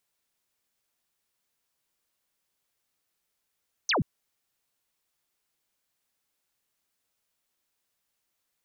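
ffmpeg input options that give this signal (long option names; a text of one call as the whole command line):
ffmpeg -f lavfi -i "aevalsrc='0.0794*clip(t/0.002,0,1)*clip((0.13-t)/0.002,0,1)*sin(2*PI*6600*0.13/log(110/6600)*(exp(log(110/6600)*t/0.13)-1))':duration=0.13:sample_rate=44100" out.wav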